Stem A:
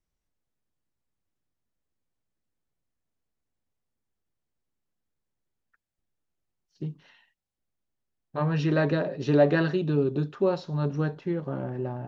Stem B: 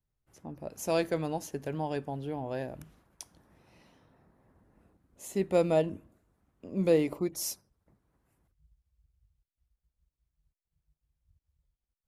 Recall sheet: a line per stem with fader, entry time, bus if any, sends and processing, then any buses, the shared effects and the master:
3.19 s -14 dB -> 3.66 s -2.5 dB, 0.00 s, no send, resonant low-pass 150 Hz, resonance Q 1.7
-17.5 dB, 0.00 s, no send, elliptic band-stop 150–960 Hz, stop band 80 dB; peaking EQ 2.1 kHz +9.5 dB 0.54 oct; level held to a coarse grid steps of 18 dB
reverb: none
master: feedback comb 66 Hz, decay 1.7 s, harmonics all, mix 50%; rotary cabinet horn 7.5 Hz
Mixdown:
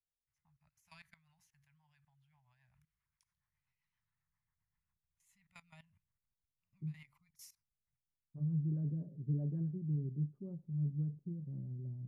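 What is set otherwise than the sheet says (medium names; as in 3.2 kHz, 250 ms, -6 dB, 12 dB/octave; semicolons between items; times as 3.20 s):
stem A -14.0 dB -> -22.0 dB; master: missing feedback comb 66 Hz, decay 1.7 s, harmonics all, mix 50%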